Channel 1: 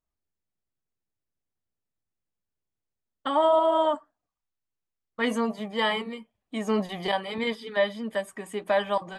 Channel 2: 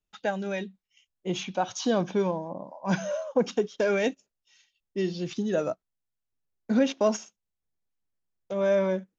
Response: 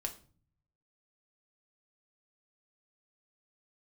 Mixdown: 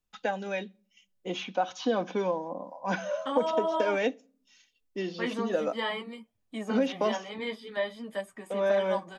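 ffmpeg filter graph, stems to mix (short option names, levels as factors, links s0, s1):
-filter_complex "[0:a]bass=f=250:g=9,treble=f=4000:g=5,flanger=delay=8.1:depth=7.4:regen=-35:speed=0.47:shape=triangular,volume=0.75[s0];[1:a]aecho=1:1:4:0.41,volume=0.891,asplit=2[s1][s2];[s2]volume=0.168[s3];[2:a]atrim=start_sample=2205[s4];[s3][s4]afir=irnorm=-1:irlink=0[s5];[s0][s1][s5]amix=inputs=3:normalize=0,acrossover=split=230|4200[s6][s7][s8];[s6]acompressor=threshold=0.00126:ratio=4[s9];[s7]acompressor=threshold=0.0794:ratio=4[s10];[s8]acompressor=threshold=0.00126:ratio=4[s11];[s9][s10][s11]amix=inputs=3:normalize=0"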